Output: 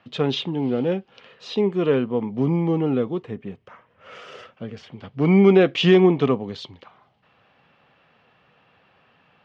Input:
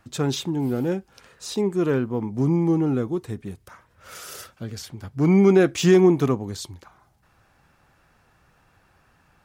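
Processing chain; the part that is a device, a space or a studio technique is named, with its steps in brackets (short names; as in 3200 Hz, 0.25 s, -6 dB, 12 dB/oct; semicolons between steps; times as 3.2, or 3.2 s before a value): kitchen radio (speaker cabinet 180–3800 Hz, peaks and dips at 330 Hz -7 dB, 480 Hz +3 dB, 890 Hz -3 dB, 1500 Hz -6 dB, 3000 Hz +7 dB); 3.22–4.92 bell 4000 Hz -10.5 dB 0.94 oct; gain +4 dB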